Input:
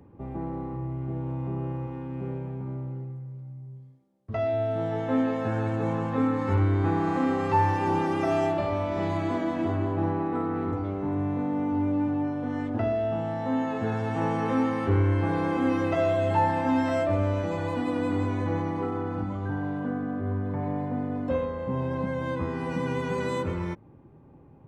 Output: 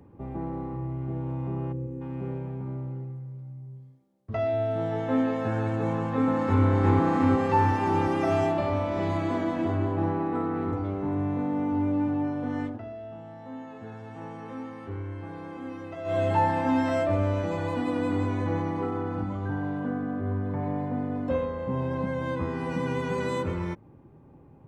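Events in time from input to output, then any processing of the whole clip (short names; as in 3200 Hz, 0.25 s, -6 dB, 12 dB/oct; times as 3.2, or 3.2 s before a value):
1.72–2.01 spectral gain 540–6000 Hz -18 dB
5.91–6.63 echo throw 0.36 s, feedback 75%, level -2 dB
12.65–16.17 dip -13 dB, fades 0.13 s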